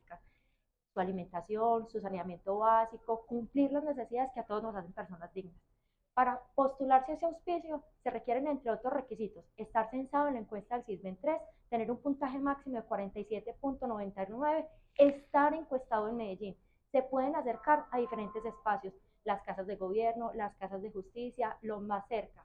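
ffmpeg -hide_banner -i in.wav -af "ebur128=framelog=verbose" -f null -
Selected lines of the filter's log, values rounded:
Integrated loudness:
  I:         -35.2 LUFS
  Threshold: -45.5 LUFS
Loudness range:
  LRA:         4.6 LU
  Threshold: -55.3 LUFS
  LRA low:   -37.9 LUFS
  LRA high:  -33.2 LUFS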